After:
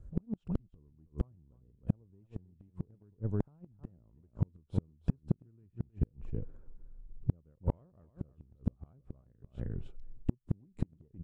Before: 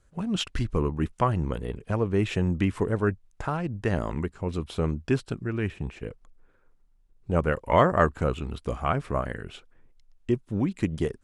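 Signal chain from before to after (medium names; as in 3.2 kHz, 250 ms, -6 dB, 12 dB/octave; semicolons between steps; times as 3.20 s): FFT filter 130 Hz 0 dB, 870 Hz -17 dB, 1.9 kHz -28 dB; compression 4:1, threshold -34 dBFS, peak gain reduction 10.5 dB; delay 314 ms -10.5 dB; Chebyshev shaper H 3 -43 dB, 8 -32 dB, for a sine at -20.5 dBFS; inverted gate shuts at -30 dBFS, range -39 dB; trim +14.5 dB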